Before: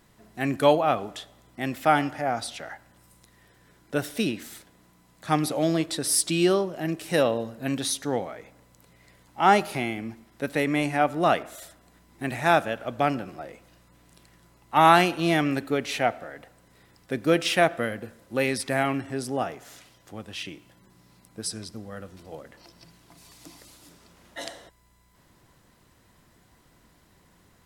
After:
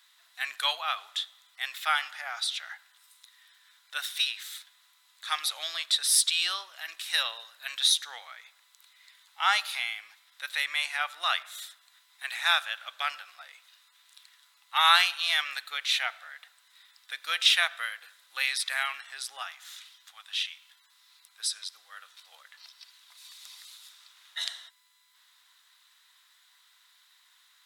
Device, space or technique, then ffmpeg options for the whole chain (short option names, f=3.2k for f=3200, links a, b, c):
headphones lying on a table: -filter_complex "[0:a]asettb=1/sr,asplit=3[a][b][c];[a]atrim=end=19.424[d];[b]atrim=start=19.42:end=21.4,asetpts=PTS-STARTPTS,afade=t=in:d=0.004:c=qsin,afade=t=out:st=1.976:d=0.004:c=qsin,highpass=f=650:w=0.5412,highpass=f=650:w=1.3066[e];[c]atrim=start=21.396[f];[d][e]acrossfade=d=0.004:c1=hsin:c2=qsin[g];[g][f]acrossfade=d=0.004:c1=qsin:c2=hsin,highpass=f=1.2k:w=0.5412,highpass=f=1.2k:w=1.3066,equalizer=f=3.7k:t=o:w=0.4:g=12"